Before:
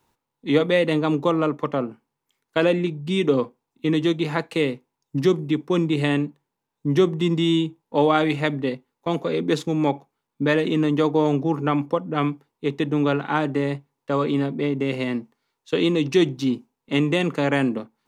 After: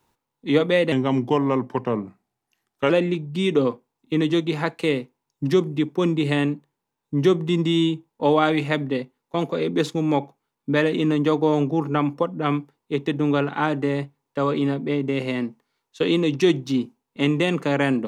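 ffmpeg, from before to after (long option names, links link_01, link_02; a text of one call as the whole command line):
ffmpeg -i in.wav -filter_complex "[0:a]asplit=3[link_01][link_02][link_03];[link_01]atrim=end=0.924[link_04];[link_02]atrim=start=0.92:end=2.62,asetpts=PTS-STARTPTS,asetrate=37926,aresample=44100,atrim=end_sample=87174,asetpts=PTS-STARTPTS[link_05];[link_03]atrim=start=2.616[link_06];[link_04][link_05]acrossfade=duration=0.004:curve1=hsin:curve2=hsin[link_07];[link_07][link_06]acrossfade=duration=0.004:curve1=hsin:curve2=hsin" out.wav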